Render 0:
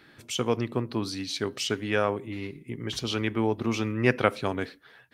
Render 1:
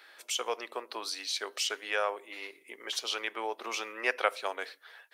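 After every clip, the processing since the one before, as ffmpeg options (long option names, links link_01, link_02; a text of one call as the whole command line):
ffmpeg -i in.wav -filter_complex "[0:a]highpass=frequency=530:width=0.5412,highpass=frequency=530:width=1.3066,highshelf=frequency=5400:gain=4.5,asplit=2[link_01][link_02];[link_02]acompressor=threshold=-38dB:ratio=6,volume=-2dB[link_03];[link_01][link_03]amix=inputs=2:normalize=0,volume=-4dB" out.wav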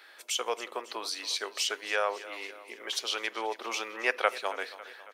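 ffmpeg -i in.wav -af "aecho=1:1:275|550|825|1100|1375:0.15|0.0868|0.0503|0.0292|0.0169,volume=1.5dB" out.wav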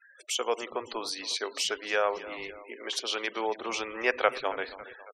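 ffmpeg -i in.wav -filter_complex "[0:a]lowshelf=frequency=370:gain=10.5,asplit=6[link_01][link_02][link_03][link_04][link_05][link_06];[link_02]adelay=110,afreqshift=-120,volume=-23.5dB[link_07];[link_03]adelay=220,afreqshift=-240,volume=-27.5dB[link_08];[link_04]adelay=330,afreqshift=-360,volume=-31.5dB[link_09];[link_05]adelay=440,afreqshift=-480,volume=-35.5dB[link_10];[link_06]adelay=550,afreqshift=-600,volume=-39.6dB[link_11];[link_01][link_07][link_08][link_09][link_10][link_11]amix=inputs=6:normalize=0,afftfilt=real='re*gte(hypot(re,im),0.00631)':imag='im*gte(hypot(re,im),0.00631)':win_size=1024:overlap=0.75" out.wav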